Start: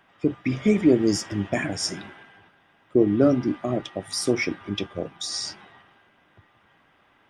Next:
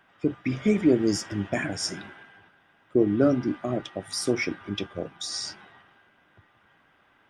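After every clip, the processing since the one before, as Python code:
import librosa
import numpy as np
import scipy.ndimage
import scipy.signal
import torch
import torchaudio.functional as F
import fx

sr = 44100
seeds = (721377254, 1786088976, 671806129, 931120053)

y = fx.peak_eq(x, sr, hz=1500.0, db=5.5, octaves=0.21)
y = F.gain(torch.from_numpy(y), -2.5).numpy()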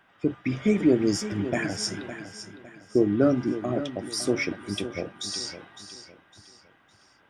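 y = fx.echo_feedback(x, sr, ms=558, feedback_pct=35, wet_db=-12)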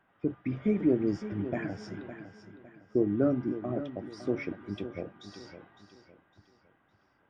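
y = fx.spacing_loss(x, sr, db_at_10k=35)
y = F.gain(torch.from_numpy(y), -4.0).numpy()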